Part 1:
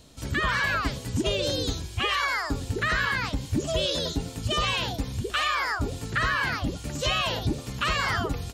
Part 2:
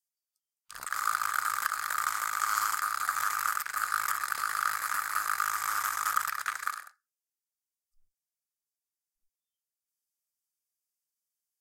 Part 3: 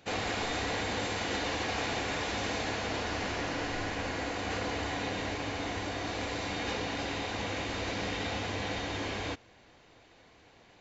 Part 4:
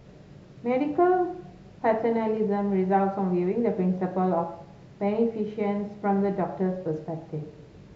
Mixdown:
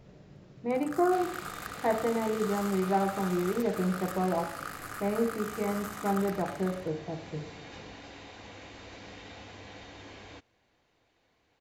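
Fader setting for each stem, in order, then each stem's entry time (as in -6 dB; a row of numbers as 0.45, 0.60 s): off, -11.0 dB, -12.5 dB, -4.5 dB; off, 0.00 s, 1.05 s, 0.00 s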